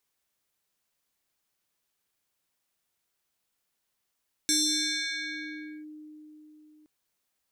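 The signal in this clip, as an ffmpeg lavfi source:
-f lavfi -i "aevalsrc='0.0891*pow(10,-3*t/4.11)*sin(2*PI*305*t+4.3*clip(1-t/1.36,0,1)*sin(2*PI*6.36*305*t))':d=2.37:s=44100"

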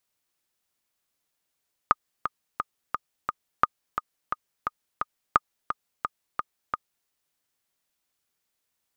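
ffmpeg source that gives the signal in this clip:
-f lavfi -i "aevalsrc='pow(10,(-4-9*gte(mod(t,5*60/174),60/174))/20)*sin(2*PI*1230*mod(t,60/174))*exp(-6.91*mod(t,60/174)/0.03)':d=5.17:s=44100"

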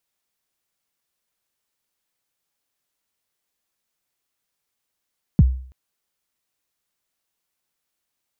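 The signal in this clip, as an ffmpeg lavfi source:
-f lavfi -i "aevalsrc='0.501*pow(10,-3*t/0.5)*sin(2*PI*(220*0.034/log(64/220)*(exp(log(64/220)*min(t,0.034)/0.034)-1)+64*max(t-0.034,0)))':d=0.33:s=44100"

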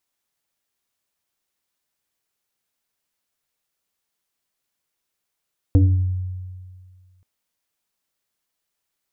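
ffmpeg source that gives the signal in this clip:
-f lavfi -i "aevalsrc='0.355*pow(10,-3*t/1.91)*sin(2*PI*92*t+1.1*pow(10,-3*t/0.68)*sin(2*PI*2.12*92*t))':d=1.48:s=44100"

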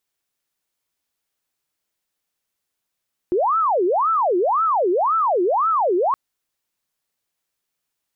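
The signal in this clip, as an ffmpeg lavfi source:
-f lavfi -i "aevalsrc='0.168*sin(2*PI*(839*t-491/(2*PI*1.9)*sin(2*PI*1.9*t)))':d=2.82:s=44100"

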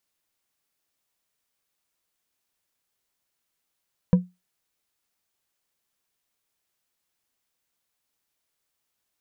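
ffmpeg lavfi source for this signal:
-f lavfi -i "aevalsrc='0.355*pow(10,-3*t/0.22)*sin(2*PI*180*t)+0.1*pow(10,-3*t/0.108)*sin(2*PI*496.3*t)+0.0282*pow(10,-3*t/0.068)*sin(2*PI*972.7*t)+0.00794*pow(10,-3*t/0.048)*sin(2*PI*1607.9*t)+0.00224*pow(10,-3*t/0.036)*sin(2*PI*2401.2*t)':d=0.89:s=44100"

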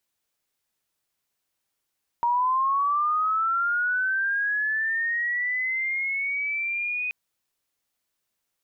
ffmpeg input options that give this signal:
-f lavfi -i "aevalsrc='pow(10,(-19.5-6*t/4.88)/20)*sin(2*PI*(940*t+1560*t*t/(2*4.88)))':d=4.88:s=44100"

